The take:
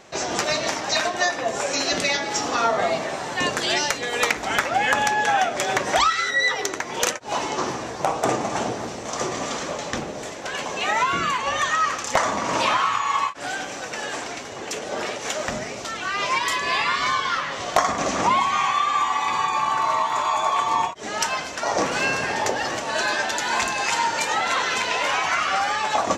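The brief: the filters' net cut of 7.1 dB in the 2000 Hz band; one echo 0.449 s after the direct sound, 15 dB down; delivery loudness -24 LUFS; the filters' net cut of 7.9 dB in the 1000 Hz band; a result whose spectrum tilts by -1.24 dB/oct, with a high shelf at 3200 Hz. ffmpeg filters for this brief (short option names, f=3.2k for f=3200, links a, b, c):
-af "equalizer=f=1k:t=o:g=-8.5,equalizer=f=2k:t=o:g=-8.5,highshelf=f=3.2k:g=6.5,aecho=1:1:449:0.178,volume=1.5dB"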